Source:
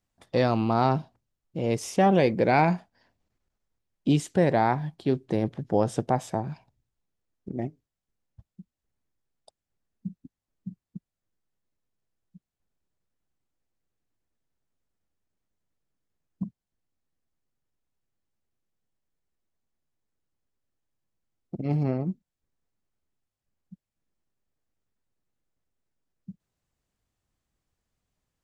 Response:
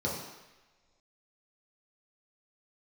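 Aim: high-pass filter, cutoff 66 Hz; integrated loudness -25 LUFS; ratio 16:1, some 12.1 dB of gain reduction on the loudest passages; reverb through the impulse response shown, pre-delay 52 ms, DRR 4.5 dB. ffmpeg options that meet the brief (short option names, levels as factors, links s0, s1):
-filter_complex "[0:a]highpass=66,acompressor=threshold=0.0398:ratio=16,asplit=2[s0][s1];[1:a]atrim=start_sample=2205,adelay=52[s2];[s1][s2]afir=irnorm=-1:irlink=0,volume=0.251[s3];[s0][s3]amix=inputs=2:normalize=0,volume=2.66"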